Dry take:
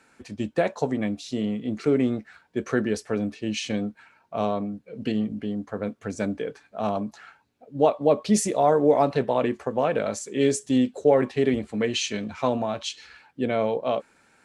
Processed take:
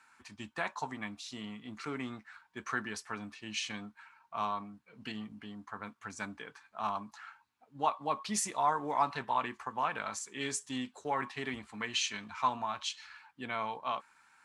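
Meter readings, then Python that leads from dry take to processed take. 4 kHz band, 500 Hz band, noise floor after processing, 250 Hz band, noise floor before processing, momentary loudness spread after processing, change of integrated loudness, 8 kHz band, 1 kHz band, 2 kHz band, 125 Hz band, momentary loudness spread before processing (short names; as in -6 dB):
-5.0 dB, -19.5 dB, -69 dBFS, -17.5 dB, -62 dBFS, 15 LU, -11.0 dB, -5.5 dB, -4.0 dB, -3.5 dB, -16.5 dB, 13 LU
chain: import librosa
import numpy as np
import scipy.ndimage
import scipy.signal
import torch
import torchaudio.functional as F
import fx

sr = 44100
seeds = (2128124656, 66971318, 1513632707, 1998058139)

y = fx.low_shelf_res(x, sr, hz=730.0, db=-10.5, q=3.0)
y = y * 10.0 ** (-5.5 / 20.0)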